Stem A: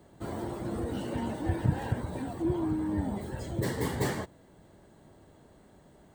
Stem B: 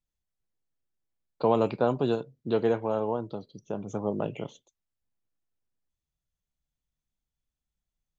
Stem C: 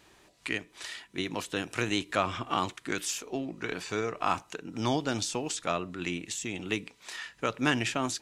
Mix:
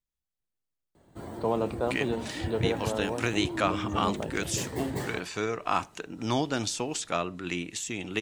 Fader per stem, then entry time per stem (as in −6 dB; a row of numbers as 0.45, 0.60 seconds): −4.0, −4.5, +1.0 decibels; 0.95, 0.00, 1.45 seconds